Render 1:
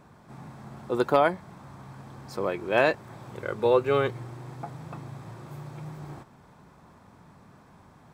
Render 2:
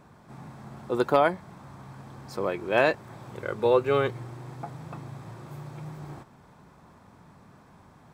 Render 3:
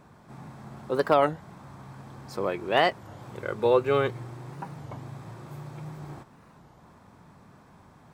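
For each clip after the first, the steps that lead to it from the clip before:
no processing that can be heard
wow of a warped record 33 1/3 rpm, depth 250 cents

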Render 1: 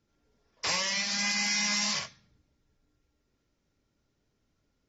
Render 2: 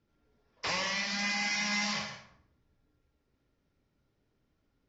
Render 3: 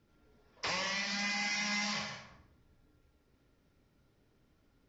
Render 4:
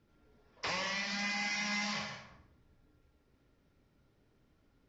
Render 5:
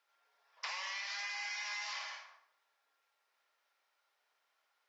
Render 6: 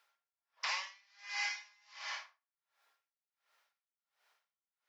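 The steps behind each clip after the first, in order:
high-frequency loss of the air 140 metres; on a send at −7 dB: convolution reverb RT60 0.60 s, pre-delay 88 ms
downward compressor 1.5 to 1, threshold −53 dBFS, peak gain reduction 9 dB; level +5.5 dB
high-shelf EQ 6,400 Hz −6.5 dB
high-pass filter 780 Hz 24 dB per octave; downward compressor, threshold −39 dBFS, peak gain reduction 6.5 dB; level +1 dB
high-pass filter 540 Hz 6 dB per octave; tremolo with a sine in dB 1.4 Hz, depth 35 dB; level +6.5 dB

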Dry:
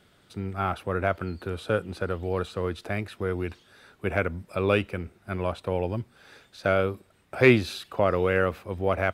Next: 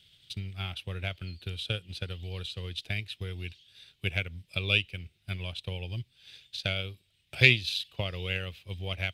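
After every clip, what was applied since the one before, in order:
drawn EQ curve 140 Hz 0 dB, 210 Hz −12 dB, 1,300 Hz −17 dB, 3,100 Hz +13 dB, 7,300 Hz +1 dB
transient designer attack +7 dB, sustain −5 dB
level −4 dB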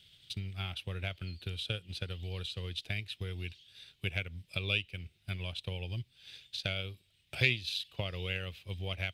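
downward compressor 1.5 to 1, threshold −38 dBFS, peak gain reduction 9 dB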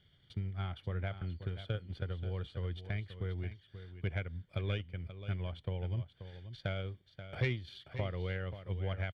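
Savitzky-Golay smoothing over 41 samples
soft clipping −23.5 dBFS, distortion −21 dB
single-tap delay 532 ms −11.5 dB
level +2 dB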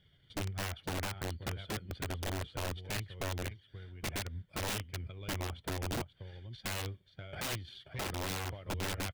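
spectral magnitudes quantised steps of 15 dB
wrap-around overflow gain 32.5 dB
notch filter 1,200 Hz, Q 28
level +1 dB

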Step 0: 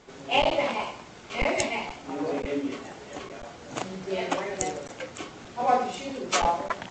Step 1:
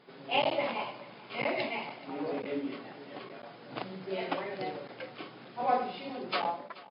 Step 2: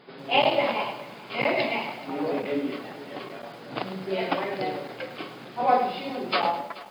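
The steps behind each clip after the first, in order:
fade-out on the ending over 0.60 s; single-tap delay 430 ms −19 dB; brick-wall band-pass 110–5,200 Hz; level −5.5 dB
feedback echo at a low word length 105 ms, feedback 35%, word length 9 bits, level −11 dB; level +7 dB

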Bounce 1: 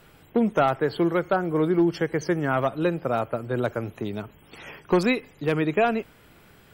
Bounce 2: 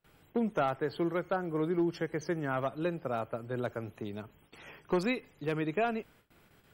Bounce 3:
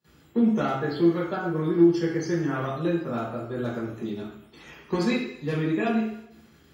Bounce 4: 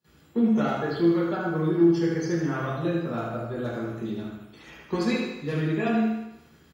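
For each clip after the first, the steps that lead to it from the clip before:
noise gate with hold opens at −43 dBFS; level −9 dB
convolution reverb RT60 0.70 s, pre-delay 3 ms, DRR −7.5 dB; level −4.5 dB
repeating echo 77 ms, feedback 52%, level −5.5 dB; level −1.5 dB

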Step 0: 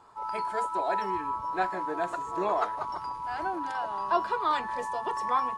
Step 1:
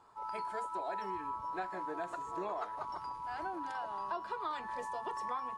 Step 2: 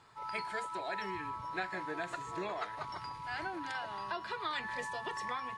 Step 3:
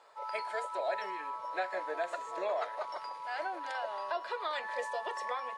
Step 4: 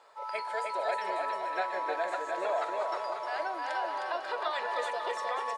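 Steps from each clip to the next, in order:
downward compressor, threshold −28 dBFS, peak gain reduction 8.5 dB; level −6.5 dB
graphic EQ with 10 bands 125 Hz +11 dB, 1,000 Hz −5 dB, 2,000 Hz +11 dB, 4,000 Hz +8 dB, 8,000 Hz +4 dB
high-pass with resonance 560 Hz, resonance Q 4.9; level −1.5 dB
bouncing-ball delay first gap 310 ms, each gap 0.75×, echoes 5; level +1.5 dB

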